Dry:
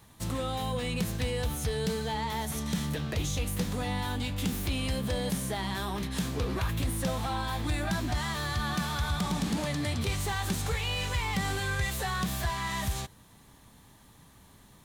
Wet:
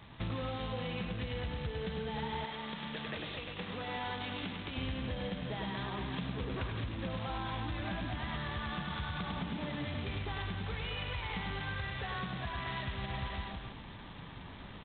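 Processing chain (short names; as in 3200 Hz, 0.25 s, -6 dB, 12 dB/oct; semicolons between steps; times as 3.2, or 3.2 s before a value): reverse bouncing-ball echo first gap 0.1 s, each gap 1.15×, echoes 5; compressor 20:1, threshold -36 dBFS, peak gain reduction 14.5 dB; 2.44–4.76 HPF 720 Hz -> 280 Hz 6 dB/oct; vocal rider within 4 dB 0.5 s; gain +2.5 dB; G.726 16 kbps 8000 Hz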